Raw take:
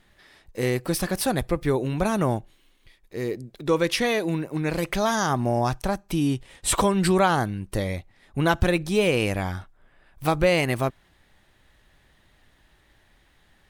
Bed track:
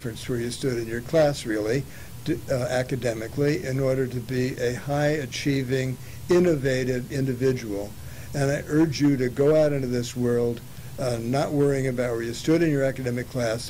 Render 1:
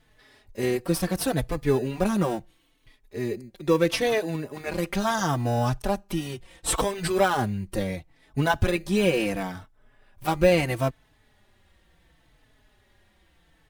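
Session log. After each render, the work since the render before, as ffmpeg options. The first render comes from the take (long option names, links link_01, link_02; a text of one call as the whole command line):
ffmpeg -i in.wav -filter_complex "[0:a]asplit=2[link_01][link_02];[link_02]acrusher=samples=20:mix=1:aa=0.000001,volume=-10.5dB[link_03];[link_01][link_03]amix=inputs=2:normalize=0,asplit=2[link_04][link_05];[link_05]adelay=4.1,afreqshift=-0.73[link_06];[link_04][link_06]amix=inputs=2:normalize=1" out.wav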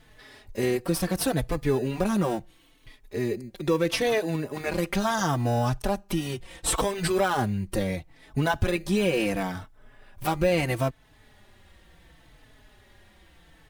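ffmpeg -i in.wav -filter_complex "[0:a]asplit=2[link_01][link_02];[link_02]alimiter=limit=-15.5dB:level=0:latency=1,volume=1dB[link_03];[link_01][link_03]amix=inputs=2:normalize=0,acompressor=threshold=-33dB:ratio=1.5" out.wav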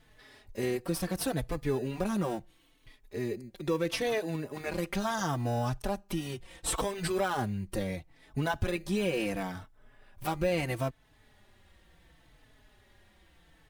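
ffmpeg -i in.wav -af "volume=-6dB" out.wav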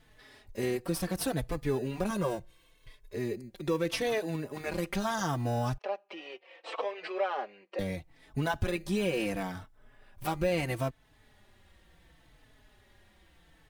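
ffmpeg -i in.wav -filter_complex "[0:a]asettb=1/sr,asplit=3[link_01][link_02][link_03];[link_01]atrim=end=2.104[link_04];[link_02]atrim=start=2.1:end=3.15,asetpts=PTS-STARTPTS,afade=type=in:duration=0.004:curve=qsin,afade=type=out:start_time=1.046:duration=0.004:curve=qsin,aecho=1:1:1.9:0.65,atrim=end_sample=46305[link_05];[link_03]atrim=start=3.146[link_06];[link_04][link_05]acrossfade=duration=0.004:curve1=hsin:curve2=qsin[link_07];[link_07][link_06]acrossfade=duration=0.004:curve1=qsin:curve2=hsin,asettb=1/sr,asplit=3[link_08][link_09][link_10];[link_08]atrim=end=5.784[link_11];[link_09]atrim=start=5.78:end=7.79,asetpts=PTS-STARTPTS,afade=type=in:duration=0.004:curve=qsin,afade=type=out:start_time=2.006:duration=0.004:curve=qsin,highpass=frequency=450:width=0.5412,highpass=frequency=450:width=1.3066,equalizer=frequency=540:width_type=q:width=4:gain=4,equalizer=frequency=940:width_type=q:width=4:gain=-3,equalizer=frequency=1500:width_type=q:width=4:gain=-5,equalizer=frequency=2500:width_type=q:width=4:gain=3,equalizer=frequency=3600:width_type=q:width=4:gain=-8,lowpass=frequency=3700:width=0.5412,lowpass=frequency=3700:width=1.3066[link_12];[link_10]atrim=start=7.786[link_13];[link_11][link_12]acrossfade=duration=0.004:curve1=hsin:curve2=qsin[link_14];[link_14][link_13]acrossfade=duration=0.004:curve1=qsin:curve2=hsin" out.wav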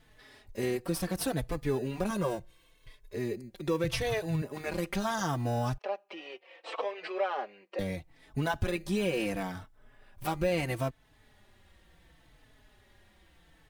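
ffmpeg -i in.wav -filter_complex "[0:a]asettb=1/sr,asplit=3[link_01][link_02][link_03];[link_01]atrim=end=3.844[link_04];[link_02]atrim=start=3.84:end=4.42,asetpts=PTS-STARTPTS,afade=type=in:duration=0.004:curve=qsin,afade=type=out:start_time=0.576:duration=0.004:curve=qsin,lowshelf=frequency=160:width_type=q:width=3:gain=12.5[link_05];[link_03]atrim=start=4.416[link_06];[link_04][link_05]acrossfade=duration=0.004:curve1=hsin:curve2=qsin[link_07];[link_07][link_06]acrossfade=duration=0.004:curve1=qsin:curve2=hsin" out.wav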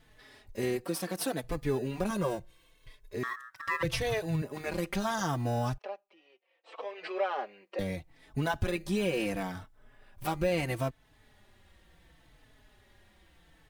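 ffmpeg -i in.wav -filter_complex "[0:a]asettb=1/sr,asplit=3[link_01][link_02][link_03];[link_01]atrim=end=0.844[link_04];[link_02]atrim=start=0.84:end=1.44,asetpts=PTS-STARTPTS,afade=type=in:duration=0.004:curve=qsin,afade=type=out:start_time=0.596:duration=0.004:curve=qsin,highpass=220[link_05];[link_03]atrim=start=1.436[link_06];[link_04][link_05]acrossfade=duration=0.004:curve1=hsin:curve2=qsin[link_07];[link_07][link_06]acrossfade=duration=0.004:curve1=qsin:curve2=hsin,asettb=1/sr,asplit=3[link_08][link_09][link_10];[link_08]atrim=end=3.234[link_11];[link_09]atrim=start=3.23:end=3.83,asetpts=PTS-STARTPTS,afade=type=in:duration=0.004:curve=qsin,afade=type=out:start_time=0.596:duration=0.004:curve=qsin,aeval=exprs='val(0)*sin(2*PI*1500*n/s)':channel_layout=same[link_12];[link_10]atrim=start=3.826[link_13];[link_11][link_12]acrossfade=duration=0.004:curve1=hsin:curve2=qsin[link_14];[link_14][link_13]acrossfade=duration=0.004:curve1=qsin:curve2=hsin,asplit=3[link_15][link_16][link_17];[link_15]atrim=end=6.11,asetpts=PTS-STARTPTS,afade=type=out:start_time=5.66:duration=0.45:silence=0.11885[link_18];[link_16]atrim=start=6.11:end=6.64,asetpts=PTS-STARTPTS,volume=-18.5dB[link_19];[link_17]atrim=start=6.64,asetpts=PTS-STARTPTS,afade=type=in:duration=0.45:silence=0.11885[link_20];[link_18][link_19][link_20]concat=n=3:v=0:a=1" out.wav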